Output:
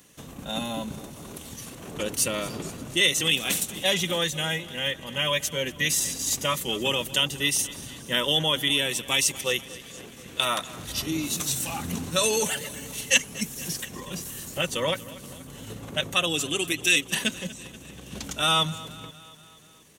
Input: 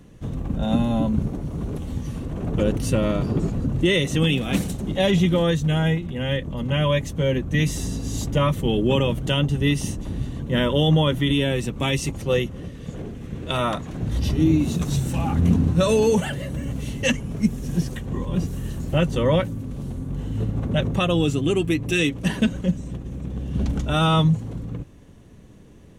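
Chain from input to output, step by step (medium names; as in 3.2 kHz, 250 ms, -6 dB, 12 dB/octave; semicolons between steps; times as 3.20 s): tilt EQ +4.5 dB/octave; tempo 1.3×; on a send: feedback delay 239 ms, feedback 59%, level -18.5 dB; on the sum: trim -2.5 dB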